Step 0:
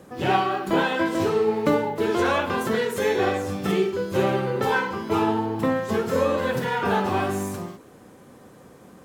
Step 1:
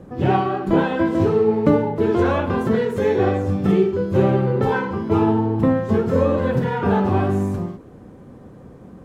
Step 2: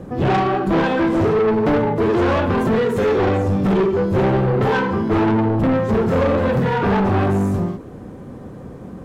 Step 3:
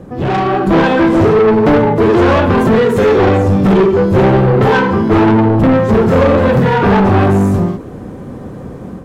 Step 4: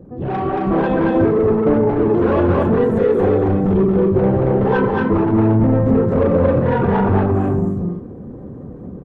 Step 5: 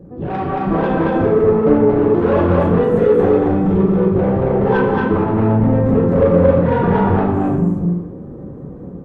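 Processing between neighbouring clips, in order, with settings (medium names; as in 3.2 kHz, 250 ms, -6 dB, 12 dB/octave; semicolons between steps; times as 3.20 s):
tilt EQ -3.5 dB/octave
saturation -20.5 dBFS, distortion -8 dB; trim +7 dB
level rider gain up to 6.5 dB; trim +1 dB
resonances exaggerated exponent 1.5; on a send: loudspeakers at several distances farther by 78 m -2 dB, 90 m -10 dB; on the sum: trim -7.5 dB
reverberation, pre-delay 3 ms, DRR 1.5 dB; trim -1 dB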